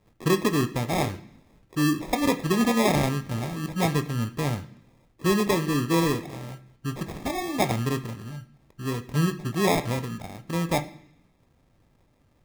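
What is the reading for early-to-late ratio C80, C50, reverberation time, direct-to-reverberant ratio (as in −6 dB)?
18.5 dB, 14.5 dB, 0.65 s, 8.0 dB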